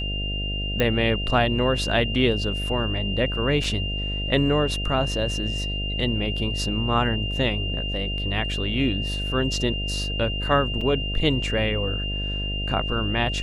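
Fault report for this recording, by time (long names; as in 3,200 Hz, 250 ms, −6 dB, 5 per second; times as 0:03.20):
mains buzz 50 Hz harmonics 14 −29 dBFS
whistle 2,800 Hz −29 dBFS
0:00.80: click −9 dBFS
0:03.64: drop-out 3.4 ms
0:10.81: drop-out 3.8 ms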